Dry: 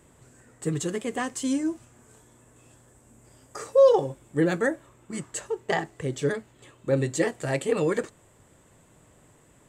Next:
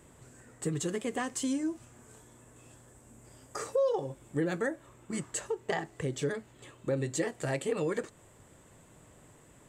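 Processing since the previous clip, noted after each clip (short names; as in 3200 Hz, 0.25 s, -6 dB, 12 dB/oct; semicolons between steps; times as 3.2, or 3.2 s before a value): compressor 2.5:1, threshold -31 dBFS, peak gain reduction 12.5 dB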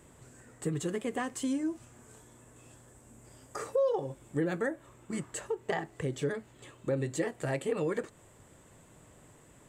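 dynamic EQ 5800 Hz, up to -6 dB, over -53 dBFS, Q 0.83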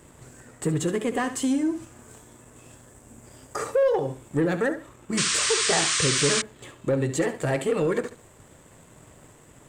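flutter echo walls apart 12 m, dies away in 0.35 s; sample leveller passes 1; painted sound noise, 5.17–6.42, 1000–9200 Hz -29 dBFS; gain +4.5 dB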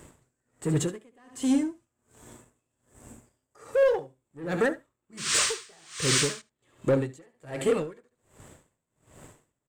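in parallel at -4 dB: hard clip -20.5 dBFS, distortion -14 dB; on the sum: echo 78 ms -16.5 dB; dB-linear tremolo 1.3 Hz, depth 35 dB; gain -2.5 dB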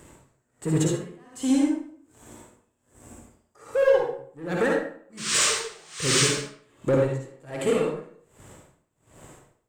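reverb RT60 0.55 s, pre-delay 50 ms, DRR -1 dB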